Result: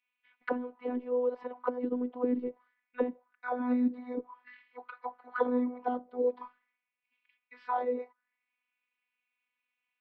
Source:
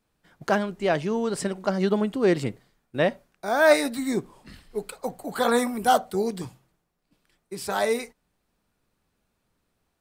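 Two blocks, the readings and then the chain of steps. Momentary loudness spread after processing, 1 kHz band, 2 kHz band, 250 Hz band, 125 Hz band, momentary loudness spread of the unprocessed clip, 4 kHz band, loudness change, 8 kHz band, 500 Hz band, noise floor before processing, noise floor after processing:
18 LU, −10.0 dB, −15.5 dB, −5.5 dB, below −25 dB, 15 LU, below −25 dB, −9.0 dB, below −40 dB, −9.0 dB, −76 dBFS, below −85 dBFS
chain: envelope filter 300–2,500 Hz, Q 4.8, down, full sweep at −19 dBFS
loudspeaker in its box 120–3,800 Hz, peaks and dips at 140 Hz +7 dB, 670 Hz −5 dB, 1,000 Hz +8 dB, 2,200 Hz +4 dB
phases set to zero 248 Hz
level +4.5 dB

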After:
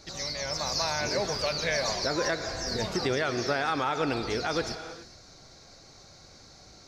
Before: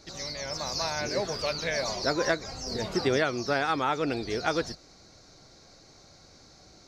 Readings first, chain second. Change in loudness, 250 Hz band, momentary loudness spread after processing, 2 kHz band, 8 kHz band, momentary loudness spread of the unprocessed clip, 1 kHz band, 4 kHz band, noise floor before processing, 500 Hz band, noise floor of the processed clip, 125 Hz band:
0.0 dB, −1.0 dB, 5 LU, 0.0 dB, +2.5 dB, 7 LU, 0.0 dB, +2.0 dB, −55 dBFS, −0.5 dB, −53 dBFS, +0.5 dB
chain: reverb whose tail is shaped and stops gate 450 ms flat, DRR 11 dB
brickwall limiter −19 dBFS, peak gain reduction 8 dB
parametric band 310 Hz −3 dB 1.5 octaves
level +2.5 dB

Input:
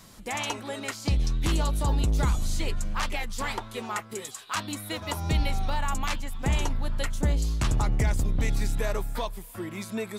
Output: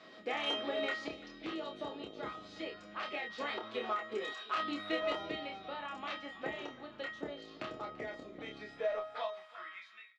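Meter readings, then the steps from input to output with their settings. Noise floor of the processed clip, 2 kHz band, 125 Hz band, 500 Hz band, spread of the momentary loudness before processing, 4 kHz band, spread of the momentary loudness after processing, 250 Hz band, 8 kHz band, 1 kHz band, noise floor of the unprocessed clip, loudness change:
−56 dBFS, −5.5 dB, −31.5 dB, −3.0 dB, 8 LU, −5.5 dB, 10 LU, −10.5 dB, −27.5 dB, −7.0 dB, −46 dBFS, −10.0 dB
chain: fade-out on the ending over 1.13 s
low-pass filter 3,800 Hz 24 dB per octave
parametric band 390 Hz −5 dB 0.32 octaves
notch filter 950 Hz, Q 6.1
downward compressor, threshold −32 dBFS, peak gain reduction 11.5 dB
high-pass filter sweep 370 Hz → 2,100 Hz, 0:08.61–0:10.00
tuned comb filter 630 Hz, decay 0.49 s, mix 90%
soft clipping −39.5 dBFS, distortion −23 dB
double-tracking delay 28 ms −4 dB
single-tap delay 339 ms −19.5 dB
every ending faded ahead of time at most 130 dB per second
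level +15.5 dB

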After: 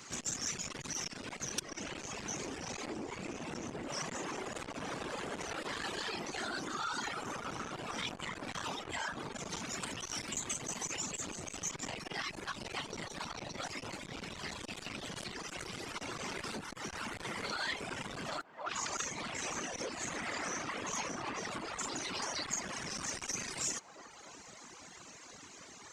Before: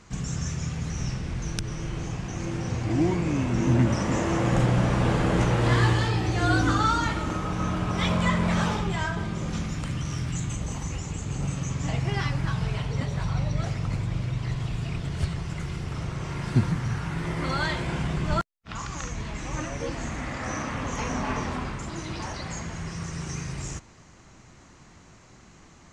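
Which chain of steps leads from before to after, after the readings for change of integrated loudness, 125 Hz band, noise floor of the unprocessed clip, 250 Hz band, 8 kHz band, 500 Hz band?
−11.5 dB, −25.5 dB, −52 dBFS, −16.5 dB, +1.0 dB, −11.0 dB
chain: high-pass filter 200 Hz 24 dB per octave
random phases in short frames
feedback echo with a band-pass in the loop 285 ms, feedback 73%, band-pass 780 Hz, level −9.5 dB
reverb reduction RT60 0.99 s
brickwall limiter −21 dBFS, peak gain reduction 8.5 dB
downward compressor 6 to 1, threshold −37 dBFS, peak gain reduction 11.5 dB
high-shelf EQ 2,200 Hz +9.5 dB
saturating transformer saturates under 2,200 Hz

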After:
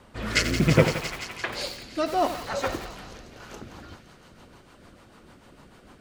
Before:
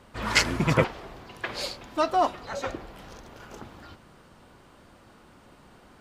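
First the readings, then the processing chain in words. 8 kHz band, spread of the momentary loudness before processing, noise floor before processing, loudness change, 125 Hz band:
+0.5 dB, 22 LU, −55 dBFS, +1.0 dB, +4.5 dB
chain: delay with a high-pass on its return 171 ms, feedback 77%, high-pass 1,800 Hz, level −10.5 dB
rotating-speaker cabinet horn 0.65 Hz, later 6.7 Hz, at 0:03.11
feedback echo at a low word length 88 ms, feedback 55%, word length 6 bits, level −9.5 dB
level +4 dB

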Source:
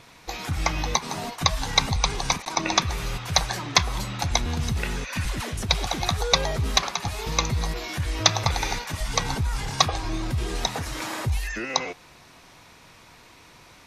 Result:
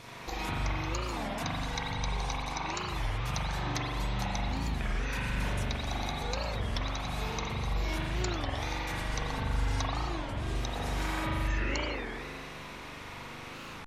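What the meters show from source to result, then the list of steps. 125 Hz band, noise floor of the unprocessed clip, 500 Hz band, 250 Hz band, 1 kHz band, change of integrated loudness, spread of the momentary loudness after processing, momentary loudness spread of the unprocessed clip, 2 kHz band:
−5.5 dB, −51 dBFS, −6.5 dB, −4.0 dB, −7.5 dB, −9.0 dB, 8 LU, 8 LU, −6.5 dB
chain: downward compressor, threshold −38 dBFS, peak gain reduction 24 dB
spring reverb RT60 2.3 s, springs 41 ms, chirp 75 ms, DRR −7 dB
wow of a warped record 33 1/3 rpm, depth 250 cents

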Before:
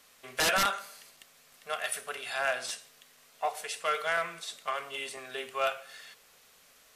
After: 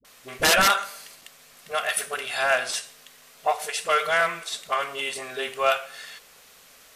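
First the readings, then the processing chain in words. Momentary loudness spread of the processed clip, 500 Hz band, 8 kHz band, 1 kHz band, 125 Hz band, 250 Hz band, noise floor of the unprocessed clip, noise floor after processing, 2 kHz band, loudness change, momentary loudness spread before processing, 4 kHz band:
19 LU, +8.0 dB, +8.0 dB, +8.0 dB, +8.0 dB, +8.0 dB, −61 dBFS, −53 dBFS, +8.0 dB, +8.0 dB, 19 LU, +8.0 dB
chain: all-pass dispersion highs, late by 48 ms, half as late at 420 Hz
level +8 dB

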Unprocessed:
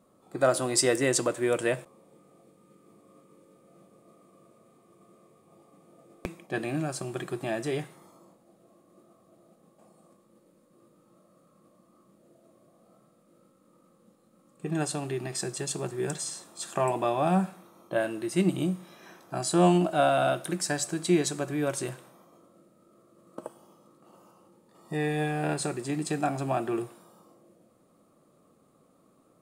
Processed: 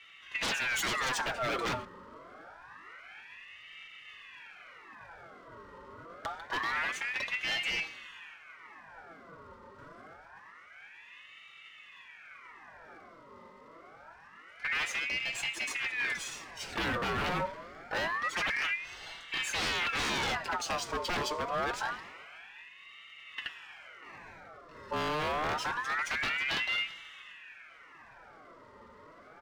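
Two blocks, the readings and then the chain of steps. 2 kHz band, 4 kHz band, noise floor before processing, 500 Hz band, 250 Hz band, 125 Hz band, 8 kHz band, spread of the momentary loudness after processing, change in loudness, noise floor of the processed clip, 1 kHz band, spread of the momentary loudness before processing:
+6.0 dB, +3.5 dB, −64 dBFS, −11.5 dB, −15.0 dB, −13.5 dB, −8.5 dB, 21 LU, −4.0 dB, −55 dBFS, −2.5 dB, 14 LU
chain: low-pass filter 5,100 Hz 24 dB per octave
comb filter 6.1 ms, depth 60%
wave folding −25 dBFS
power curve on the samples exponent 0.7
ring modulator whose carrier an LFO sweeps 1,600 Hz, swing 55%, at 0.26 Hz

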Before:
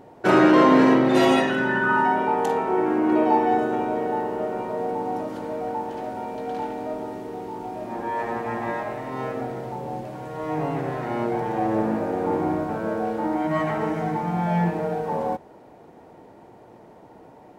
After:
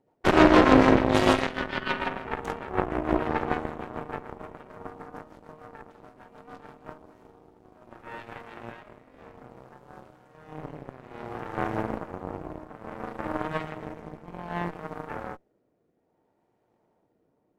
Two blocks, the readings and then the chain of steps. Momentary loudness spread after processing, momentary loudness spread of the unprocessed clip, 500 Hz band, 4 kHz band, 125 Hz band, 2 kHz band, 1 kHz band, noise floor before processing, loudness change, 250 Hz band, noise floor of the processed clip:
24 LU, 14 LU, −5.5 dB, −0.5 dB, −4.0 dB, −4.0 dB, −6.5 dB, −49 dBFS, −2.0 dB, −5.0 dB, −72 dBFS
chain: rotating-speaker cabinet horn 6.7 Hz, later 0.6 Hz, at 0:06.51
harmonic generator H 3 −40 dB, 4 −12 dB, 7 −18 dB, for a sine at −5 dBFS

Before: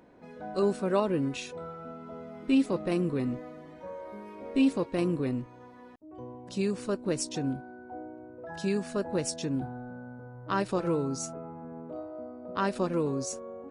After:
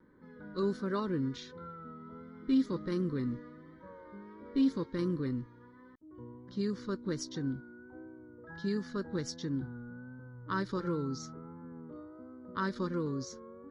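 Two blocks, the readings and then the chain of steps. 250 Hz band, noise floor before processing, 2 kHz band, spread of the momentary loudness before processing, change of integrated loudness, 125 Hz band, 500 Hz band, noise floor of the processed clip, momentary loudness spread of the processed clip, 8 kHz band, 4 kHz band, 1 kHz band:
−3.5 dB, −50 dBFS, −4.0 dB, 17 LU, −4.5 dB, −3.0 dB, −7.5 dB, −56 dBFS, 19 LU, −10.5 dB, −5.0 dB, −6.5 dB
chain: low-pass that shuts in the quiet parts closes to 2,200 Hz, open at −23 dBFS
pitch vibrato 1.4 Hz 47 cents
phaser with its sweep stopped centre 2,600 Hz, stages 6
level −2 dB

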